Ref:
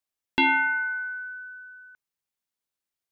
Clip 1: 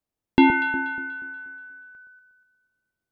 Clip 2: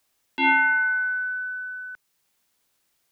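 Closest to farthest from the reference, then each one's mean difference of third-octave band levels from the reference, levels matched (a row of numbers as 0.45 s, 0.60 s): 2, 1; 1.5 dB, 4.5 dB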